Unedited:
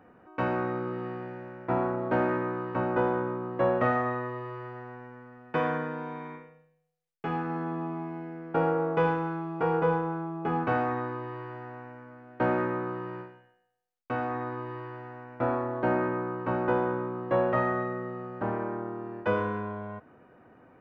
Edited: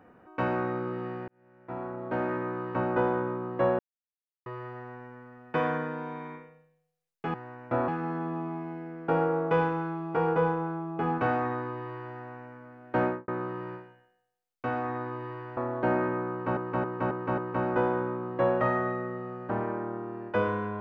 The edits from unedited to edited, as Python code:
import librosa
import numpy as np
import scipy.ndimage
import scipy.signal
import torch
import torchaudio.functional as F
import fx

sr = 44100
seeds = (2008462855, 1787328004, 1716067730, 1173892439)

y = fx.studio_fade_out(x, sr, start_s=12.48, length_s=0.26)
y = fx.edit(y, sr, fx.fade_in_span(start_s=1.28, length_s=1.46),
    fx.silence(start_s=3.79, length_s=0.67),
    fx.move(start_s=15.03, length_s=0.54, to_s=7.34),
    fx.repeat(start_s=16.3, length_s=0.27, count=5), tone=tone)